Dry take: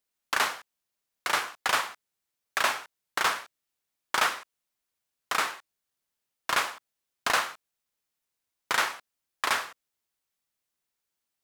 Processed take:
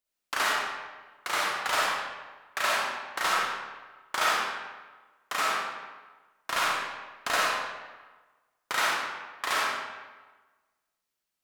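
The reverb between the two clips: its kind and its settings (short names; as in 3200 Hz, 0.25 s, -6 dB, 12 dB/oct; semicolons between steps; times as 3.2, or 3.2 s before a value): digital reverb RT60 1.3 s, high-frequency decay 0.75×, pre-delay 10 ms, DRR -5 dB; gain -5 dB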